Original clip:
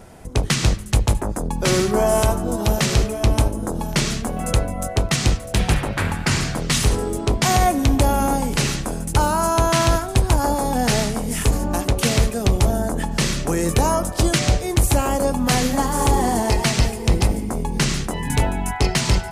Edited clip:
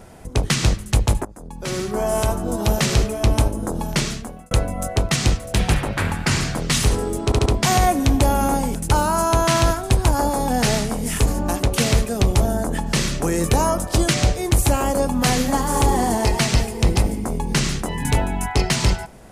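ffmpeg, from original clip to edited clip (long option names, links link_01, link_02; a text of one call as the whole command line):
ffmpeg -i in.wav -filter_complex "[0:a]asplit=7[link_01][link_02][link_03][link_04][link_05][link_06][link_07];[link_01]atrim=end=1.25,asetpts=PTS-STARTPTS,afade=type=out:start_time=1.246:duration=0.004:curve=hsin:silence=0.105925[link_08];[link_02]atrim=start=1.25:end=4.51,asetpts=PTS-STARTPTS,afade=type=in:duration=1.4:silence=0.105925,afade=type=out:start_time=2.67:duration=0.59[link_09];[link_03]atrim=start=4.51:end=7.322,asetpts=PTS-STARTPTS,afade=type=in:duration=0.004:curve=hsin[link_10];[link_04]atrim=start=7.248:end=7.322[link_11];[link_05]atrim=start=7.248:end=7.322[link_12];[link_06]atrim=start=7.248:end=8.542[link_13];[link_07]atrim=start=8.998[link_14];[link_08][link_09][link_10]concat=n=3:v=0:a=1[link_15];[link_15][link_11]acrossfade=duration=0.004:curve1=hsin:curve2=hsin[link_16];[link_16][link_12]acrossfade=duration=0.004:curve1=hsin:curve2=hsin[link_17];[link_17][link_13]acrossfade=duration=0.004:curve1=hsin:curve2=hsin[link_18];[link_18][link_14]acrossfade=duration=0.004:curve1=hsin:curve2=hsin" out.wav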